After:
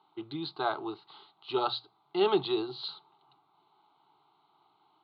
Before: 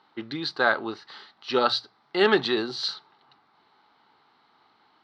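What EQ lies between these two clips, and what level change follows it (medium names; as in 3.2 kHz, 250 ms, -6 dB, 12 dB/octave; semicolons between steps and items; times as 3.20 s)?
steep low-pass 4 kHz 48 dB/octave; static phaser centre 350 Hz, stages 8; -3.0 dB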